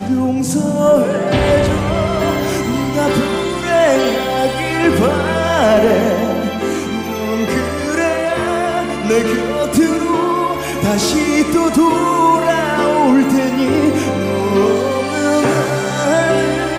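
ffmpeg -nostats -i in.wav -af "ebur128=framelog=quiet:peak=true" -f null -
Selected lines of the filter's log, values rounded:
Integrated loudness:
  I:         -15.0 LUFS
  Threshold: -25.0 LUFS
Loudness range:
  LRA:         2.8 LU
  Threshold: -35.0 LUFS
  LRA low:   -16.5 LUFS
  LRA high:  -13.6 LUFS
True peak:
  Peak:       -3.2 dBFS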